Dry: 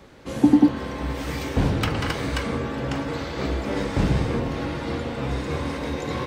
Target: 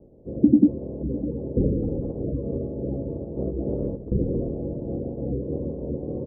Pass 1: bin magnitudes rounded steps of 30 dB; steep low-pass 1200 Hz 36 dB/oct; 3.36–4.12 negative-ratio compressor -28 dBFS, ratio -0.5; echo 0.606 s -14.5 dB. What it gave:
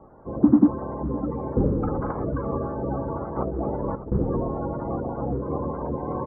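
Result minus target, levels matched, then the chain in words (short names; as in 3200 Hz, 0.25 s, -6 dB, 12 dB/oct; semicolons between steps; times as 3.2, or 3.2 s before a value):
1000 Hz band +20.0 dB
bin magnitudes rounded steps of 30 dB; steep low-pass 550 Hz 36 dB/oct; 3.36–4.12 negative-ratio compressor -28 dBFS, ratio -0.5; echo 0.606 s -14.5 dB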